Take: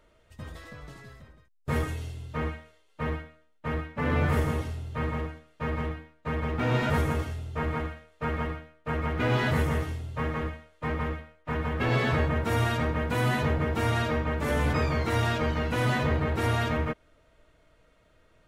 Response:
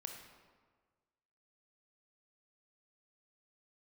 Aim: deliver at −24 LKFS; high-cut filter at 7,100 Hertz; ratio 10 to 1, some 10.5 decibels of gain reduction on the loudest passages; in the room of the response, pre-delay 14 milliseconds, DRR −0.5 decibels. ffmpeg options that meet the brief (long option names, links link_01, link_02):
-filter_complex "[0:a]lowpass=7100,acompressor=threshold=-32dB:ratio=10,asplit=2[link_01][link_02];[1:a]atrim=start_sample=2205,adelay=14[link_03];[link_02][link_03]afir=irnorm=-1:irlink=0,volume=3.5dB[link_04];[link_01][link_04]amix=inputs=2:normalize=0,volume=10dB"